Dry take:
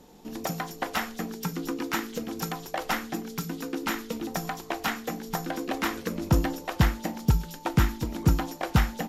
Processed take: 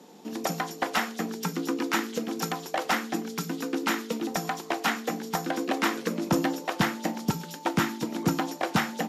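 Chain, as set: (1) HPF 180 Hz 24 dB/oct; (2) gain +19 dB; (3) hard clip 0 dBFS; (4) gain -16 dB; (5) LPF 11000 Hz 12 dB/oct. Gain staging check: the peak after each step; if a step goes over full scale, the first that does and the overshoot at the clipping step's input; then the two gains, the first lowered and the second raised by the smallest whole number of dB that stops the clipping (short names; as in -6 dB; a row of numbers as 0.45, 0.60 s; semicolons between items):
-12.5, +6.5, 0.0, -16.0, -15.5 dBFS; step 2, 6.5 dB; step 2 +12 dB, step 4 -9 dB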